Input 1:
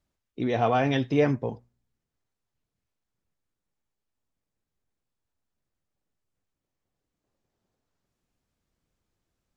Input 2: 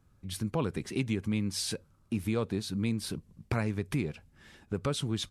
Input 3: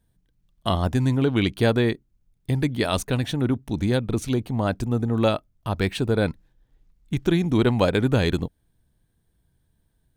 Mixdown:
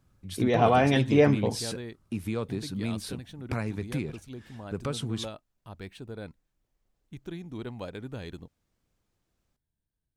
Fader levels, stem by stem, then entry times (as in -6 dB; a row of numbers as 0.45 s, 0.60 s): +2.0 dB, -1.0 dB, -18.5 dB; 0.00 s, 0.00 s, 0.00 s